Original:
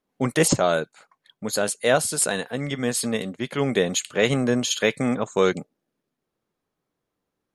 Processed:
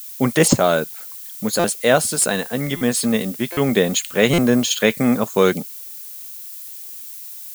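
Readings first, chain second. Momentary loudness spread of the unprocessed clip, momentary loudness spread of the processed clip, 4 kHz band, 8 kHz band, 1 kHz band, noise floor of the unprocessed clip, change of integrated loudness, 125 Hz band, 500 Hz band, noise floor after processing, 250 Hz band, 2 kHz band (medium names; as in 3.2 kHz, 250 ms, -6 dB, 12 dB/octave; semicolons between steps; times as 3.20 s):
8 LU, 16 LU, +4.0 dB, +4.0 dB, +4.5 dB, -82 dBFS, +5.0 dB, +5.0 dB, +4.0 dB, -35 dBFS, +6.5 dB, +4.0 dB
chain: peaking EQ 220 Hz +5 dB 0.42 oct; added noise violet -39 dBFS; buffer glitch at 1.59/2.76/3.52/4.33 s, samples 256, times 8; trim +4 dB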